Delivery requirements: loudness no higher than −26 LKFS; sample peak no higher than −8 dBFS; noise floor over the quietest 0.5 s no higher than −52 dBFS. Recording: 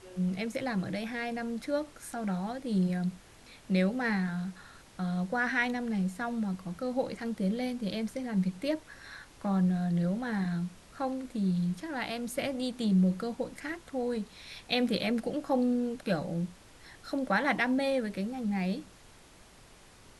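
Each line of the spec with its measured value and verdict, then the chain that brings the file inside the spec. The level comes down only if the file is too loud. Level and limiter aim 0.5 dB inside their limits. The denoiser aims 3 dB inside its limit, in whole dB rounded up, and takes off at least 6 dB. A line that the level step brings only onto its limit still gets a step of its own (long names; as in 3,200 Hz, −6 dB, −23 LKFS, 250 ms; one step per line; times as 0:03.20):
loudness −32.0 LKFS: in spec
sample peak −14.5 dBFS: in spec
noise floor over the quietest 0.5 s −56 dBFS: in spec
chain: no processing needed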